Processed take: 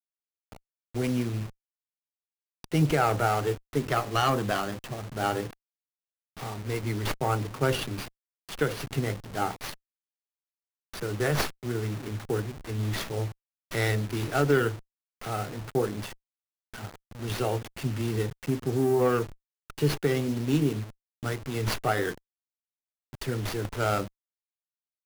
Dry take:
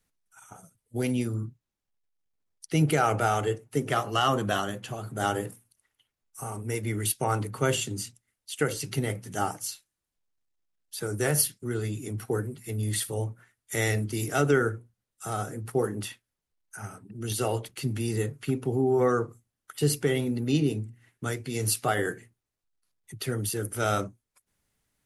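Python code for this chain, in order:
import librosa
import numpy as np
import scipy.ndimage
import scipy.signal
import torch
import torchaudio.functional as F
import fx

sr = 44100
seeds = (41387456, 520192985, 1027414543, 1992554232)

y = fx.delta_hold(x, sr, step_db=-36.0)
y = fx.running_max(y, sr, window=5)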